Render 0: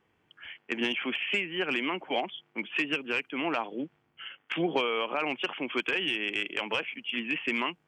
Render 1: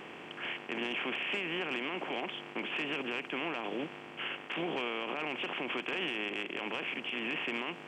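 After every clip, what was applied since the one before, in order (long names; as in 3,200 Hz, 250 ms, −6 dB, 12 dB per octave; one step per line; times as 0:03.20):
compressor on every frequency bin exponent 0.4
brickwall limiter −18 dBFS, peak gain reduction 8.5 dB
level −8 dB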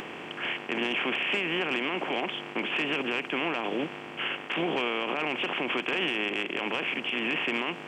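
upward compression, threshold −44 dBFS
level +6.5 dB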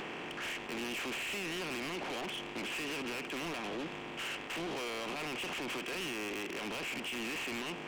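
soft clipping −36.5 dBFS, distortion −6 dB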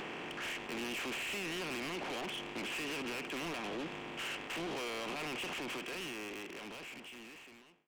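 fade-out on the ending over 2.52 s
level −1 dB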